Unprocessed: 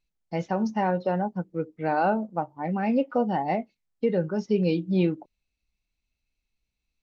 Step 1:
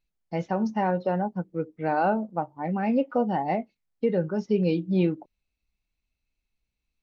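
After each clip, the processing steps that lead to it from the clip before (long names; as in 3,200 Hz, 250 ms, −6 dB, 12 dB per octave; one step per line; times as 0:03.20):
high-shelf EQ 4,100 Hz −5.5 dB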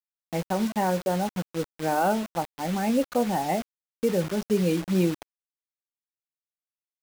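bit reduction 6 bits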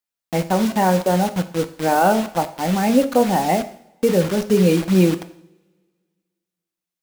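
coupled-rooms reverb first 0.61 s, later 1.9 s, from −23 dB, DRR 9.5 dB
level +7.5 dB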